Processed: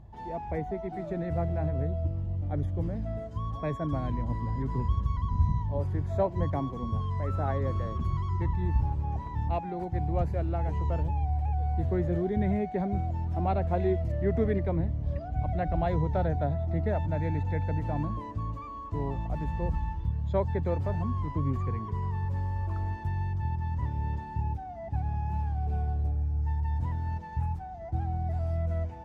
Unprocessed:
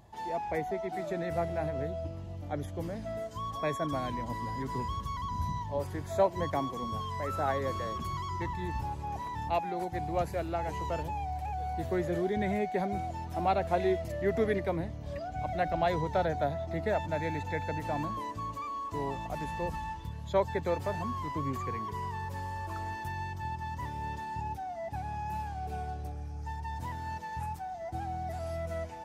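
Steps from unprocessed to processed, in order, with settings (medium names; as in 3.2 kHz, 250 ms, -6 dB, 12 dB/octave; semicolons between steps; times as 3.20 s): RIAA curve playback; trim -3.5 dB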